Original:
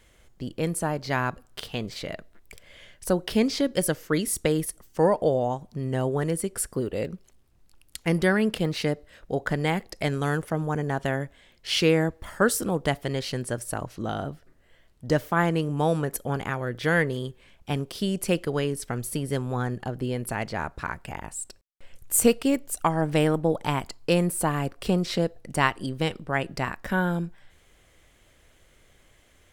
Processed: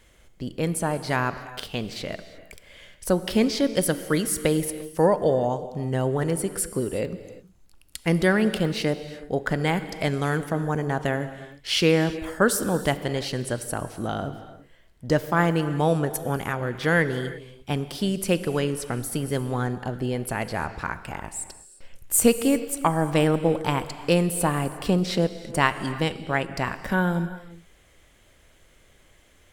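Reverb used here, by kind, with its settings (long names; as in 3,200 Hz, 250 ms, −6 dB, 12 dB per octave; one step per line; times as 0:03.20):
reverb whose tail is shaped and stops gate 380 ms flat, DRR 11.5 dB
level +1.5 dB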